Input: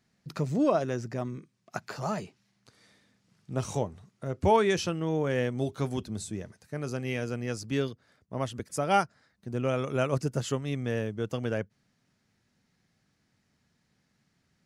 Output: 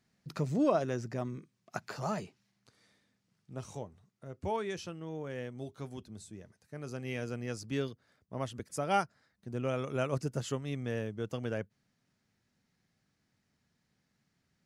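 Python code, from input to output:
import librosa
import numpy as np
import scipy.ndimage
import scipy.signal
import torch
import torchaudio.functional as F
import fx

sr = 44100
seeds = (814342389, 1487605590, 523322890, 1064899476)

y = fx.gain(x, sr, db=fx.line((2.2, -3.0), (3.75, -12.0), (6.37, -12.0), (7.2, -5.0)))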